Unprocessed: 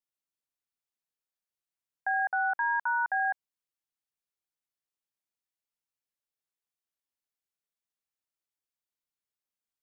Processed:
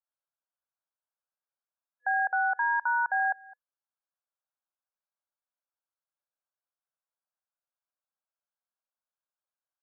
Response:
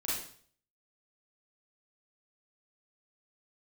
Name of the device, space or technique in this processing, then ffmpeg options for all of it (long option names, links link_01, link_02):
ducked delay: -filter_complex "[0:a]asplit=3[link_01][link_02][link_03];[link_02]adelay=211,volume=-7.5dB[link_04];[link_03]apad=whole_len=442673[link_05];[link_04][link_05]sidechaincompress=threshold=-49dB:ratio=4:attack=16:release=540[link_06];[link_01][link_06]amix=inputs=2:normalize=0,afftfilt=real='re*between(b*sr/4096,500,1700)':imag='im*between(b*sr/4096,500,1700)':win_size=4096:overlap=0.75,volume=1.5dB"